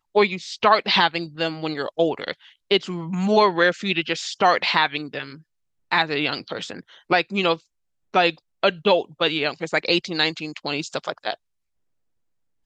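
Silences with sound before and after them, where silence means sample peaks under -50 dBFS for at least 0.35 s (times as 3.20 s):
5.42–5.91 s
7.60–8.14 s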